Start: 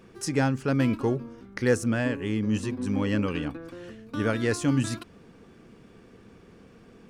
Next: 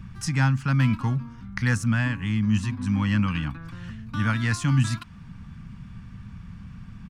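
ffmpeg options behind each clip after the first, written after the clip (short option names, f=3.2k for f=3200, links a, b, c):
-filter_complex "[0:a]firequalizer=gain_entry='entry(180,0);entry(390,-28);entry(950,-3);entry(10000,-9)':delay=0.05:min_phase=1,acrossover=split=160|2400[a][b][c];[a]acompressor=mode=upward:threshold=-37dB:ratio=2.5[d];[d][b][c]amix=inputs=3:normalize=0,volume=7.5dB"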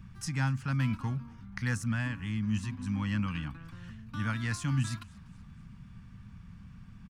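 -filter_complex "[0:a]highshelf=f=8.3k:g=5,asplit=4[a][b][c][d];[b]adelay=241,afreqshift=-35,volume=-24dB[e];[c]adelay=482,afreqshift=-70,volume=-30.4dB[f];[d]adelay=723,afreqshift=-105,volume=-36.8dB[g];[a][e][f][g]amix=inputs=4:normalize=0,volume=-8.5dB"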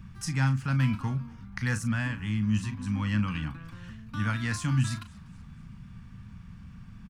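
-filter_complex "[0:a]asplit=2[a][b];[b]adelay=38,volume=-11dB[c];[a][c]amix=inputs=2:normalize=0,volume=3dB"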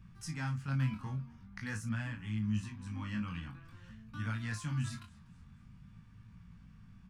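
-af "flanger=delay=17.5:depth=5.8:speed=0.47,volume=-6.5dB"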